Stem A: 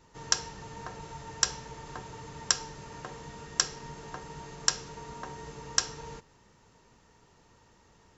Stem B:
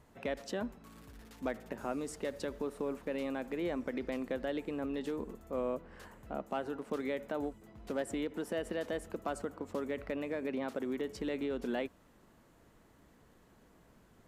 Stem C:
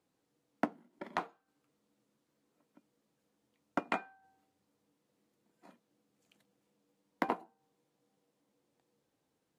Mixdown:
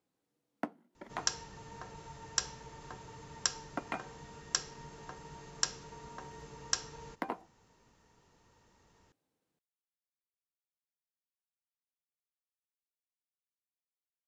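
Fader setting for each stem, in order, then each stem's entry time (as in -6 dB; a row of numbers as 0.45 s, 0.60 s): -6.0 dB, mute, -4.5 dB; 0.95 s, mute, 0.00 s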